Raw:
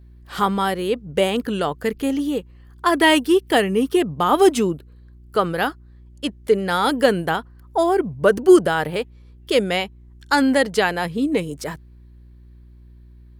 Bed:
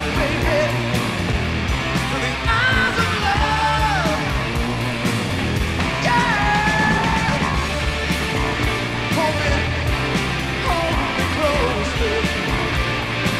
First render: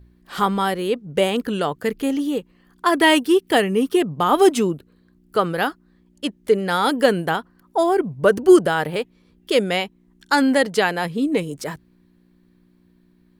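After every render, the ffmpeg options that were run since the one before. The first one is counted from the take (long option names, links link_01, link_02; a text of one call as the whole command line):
ffmpeg -i in.wav -af "bandreject=frequency=60:width_type=h:width=4,bandreject=frequency=120:width_type=h:width=4" out.wav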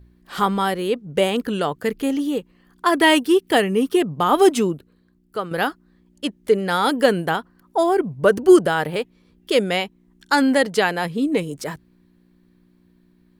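ffmpeg -i in.wav -filter_complex "[0:a]asplit=2[link_01][link_02];[link_01]atrim=end=5.51,asetpts=PTS-STARTPTS,afade=type=out:start_time=4.63:duration=0.88:silence=0.354813[link_03];[link_02]atrim=start=5.51,asetpts=PTS-STARTPTS,afade=type=in:duration=0.004:curve=hsin:silence=0.354813[link_04];[link_03][link_04]concat=n=2:v=0:a=1" out.wav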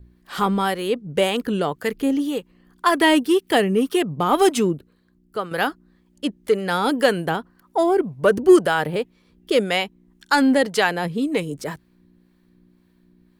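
ffmpeg -i in.wav -filter_complex "[0:a]acrossover=split=580[link_01][link_02];[link_01]aeval=exprs='val(0)*(1-0.5/2+0.5/2*cos(2*PI*1.9*n/s))':channel_layout=same[link_03];[link_02]aeval=exprs='val(0)*(1-0.5/2-0.5/2*cos(2*PI*1.9*n/s))':channel_layout=same[link_04];[link_03][link_04]amix=inputs=2:normalize=0,asplit=2[link_05][link_06];[link_06]volume=16dB,asoftclip=hard,volume=-16dB,volume=-11dB[link_07];[link_05][link_07]amix=inputs=2:normalize=0" out.wav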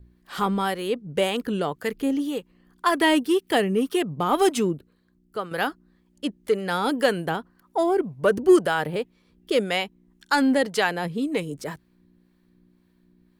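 ffmpeg -i in.wav -af "volume=-3.5dB" out.wav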